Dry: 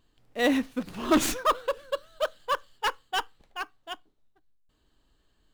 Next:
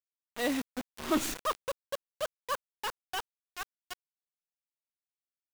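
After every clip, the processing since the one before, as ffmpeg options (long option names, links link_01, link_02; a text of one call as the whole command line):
ffmpeg -i in.wav -af "acrusher=bits=4:mix=0:aa=0.000001,volume=-7.5dB" out.wav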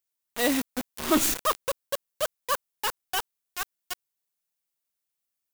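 ffmpeg -i in.wav -af "crystalizer=i=1:c=0,volume=5.5dB" out.wav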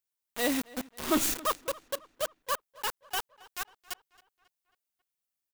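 ffmpeg -i in.wav -filter_complex "[0:a]asplit=2[link_01][link_02];[link_02]adelay=271,lowpass=frequency=4400:poles=1,volume=-21dB,asplit=2[link_03][link_04];[link_04]adelay=271,lowpass=frequency=4400:poles=1,volume=0.53,asplit=2[link_05][link_06];[link_06]adelay=271,lowpass=frequency=4400:poles=1,volume=0.53,asplit=2[link_07][link_08];[link_08]adelay=271,lowpass=frequency=4400:poles=1,volume=0.53[link_09];[link_01][link_03][link_05][link_07][link_09]amix=inputs=5:normalize=0,volume=-4dB" out.wav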